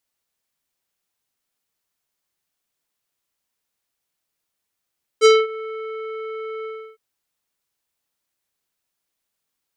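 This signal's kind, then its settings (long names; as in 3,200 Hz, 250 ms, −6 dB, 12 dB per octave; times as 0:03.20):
subtractive voice square A4 24 dB per octave, low-pass 2,400 Hz, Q 0.92, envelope 2 octaves, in 0.23 s, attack 40 ms, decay 0.22 s, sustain −21 dB, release 0.32 s, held 1.44 s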